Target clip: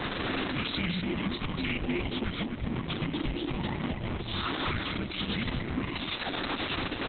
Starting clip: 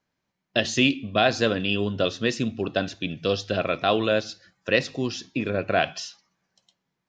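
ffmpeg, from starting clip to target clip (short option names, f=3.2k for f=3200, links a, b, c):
-filter_complex "[0:a]aeval=exprs='val(0)+0.5*0.0398*sgn(val(0))':c=same,asettb=1/sr,asplit=3[a][b][c];[a]atrim=end=1.884[d];[b]atrim=start=1.88:end=4.27,asetpts=PTS-STARTPTS,afade=t=in:d=0.004:c=qsin,afade=t=out:st=2.386:d=0.004:c=qsin,lowpass=f=2.8k:p=1[e];[c]atrim=start=4.266[f];[d][e]acrossfade=d=0.004:c1=hsin:c2=qsin[g];[g][f]acrossfade=d=0.004:c1=qsin:c2=hsin,acompressor=threshold=-27dB:ratio=10,afreqshift=-450,asoftclip=type=tanh:threshold=-33.5dB,aecho=1:1:250:0.562,volume=6.5dB" -ar 48000 -c:a libopus -b:a 6k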